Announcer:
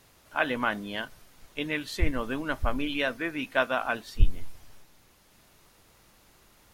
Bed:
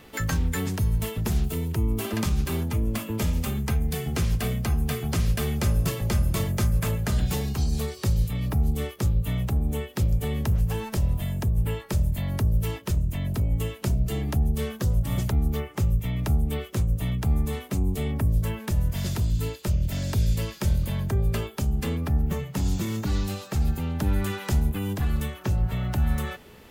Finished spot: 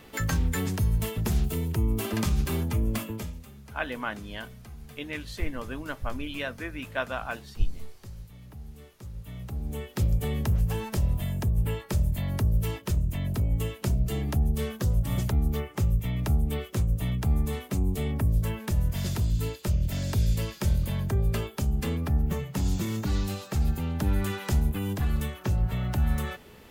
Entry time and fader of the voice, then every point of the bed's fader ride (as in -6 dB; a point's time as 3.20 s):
3.40 s, -5.0 dB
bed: 3.03 s -1 dB
3.46 s -20 dB
8.96 s -20 dB
10.01 s -1.5 dB